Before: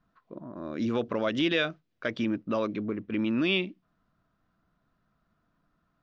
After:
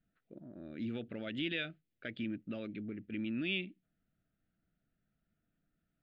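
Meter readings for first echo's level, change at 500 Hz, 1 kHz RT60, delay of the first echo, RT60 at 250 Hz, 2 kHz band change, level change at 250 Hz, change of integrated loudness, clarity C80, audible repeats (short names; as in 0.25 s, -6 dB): none, -15.0 dB, none, none, none, -9.0 dB, -10.0 dB, -10.5 dB, none, none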